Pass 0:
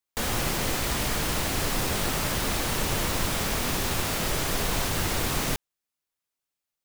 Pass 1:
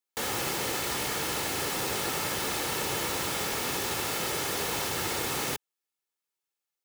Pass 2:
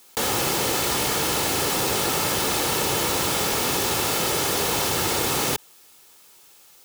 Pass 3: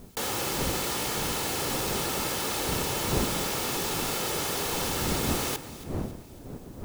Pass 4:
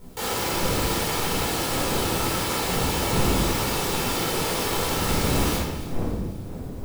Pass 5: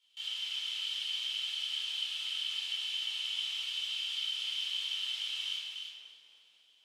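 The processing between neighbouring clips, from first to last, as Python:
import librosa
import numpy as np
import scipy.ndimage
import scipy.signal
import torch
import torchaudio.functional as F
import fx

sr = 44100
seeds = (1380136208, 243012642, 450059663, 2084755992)

y1 = scipy.signal.sosfilt(scipy.signal.bessel(2, 180.0, 'highpass', norm='mag', fs=sr, output='sos'), x)
y1 = y1 + 0.36 * np.pad(y1, (int(2.3 * sr / 1000.0), 0))[:len(y1)]
y1 = y1 * 10.0 ** (-2.5 / 20.0)
y2 = fx.peak_eq(y1, sr, hz=1900.0, db=-4.0, octaves=0.76)
y2 = fx.env_flatten(y2, sr, amount_pct=50)
y2 = y2 * 10.0 ** (7.5 / 20.0)
y3 = fx.dmg_wind(y2, sr, seeds[0], corner_hz=300.0, level_db=-30.0)
y3 = fx.echo_alternate(y3, sr, ms=138, hz=2200.0, feedback_pct=69, wet_db=-12.5)
y3 = y3 * 10.0 ** (-7.0 / 20.0)
y4 = fx.room_shoebox(y3, sr, seeds[1], volume_m3=570.0, walls='mixed', distance_m=4.4)
y4 = y4 * 10.0 ** (-5.5 / 20.0)
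y5 = fx.ladder_bandpass(y4, sr, hz=3200.0, resonance_pct=85)
y5 = y5 + 10.0 ** (-6.0 / 20.0) * np.pad(y5, (int(301 * sr / 1000.0), 0))[:len(y5)]
y5 = y5 * 10.0 ** (-3.0 / 20.0)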